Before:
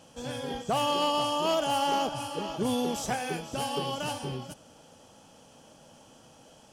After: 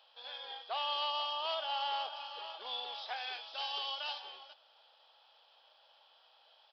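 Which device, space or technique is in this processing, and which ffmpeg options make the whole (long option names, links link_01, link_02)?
musical greeting card: -filter_complex "[0:a]asettb=1/sr,asplit=3[link_01][link_02][link_03];[link_01]atrim=end=3.164[link_04];[link_02]atrim=start=3.16:end=4.2,asetpts=PTS-STARTPTS,afade=type=in:duration=0.004:curve=qsin,afade=type=out:start_time=1.036:duration=0.004:curve=qsin,highshelf=frequency=4300:gain=10[link_05];[link_03]atrim=start=4.196[link_06];[link_04][link_05]acrossfade=duration=0.004:curve1=hsin:curve2=qsin[link_07];[link_07][link_06]acrossfade=duration=0.004:curve1=qsin:curve2=hsin,aresample=11025,aresample=44100,highpass=frequency=700:width=0.5412,highpass=frequency=700:width=1.3066,equalizer=frequency=3700:width_type=o:width=0.38:gain=12,volume=-8dB"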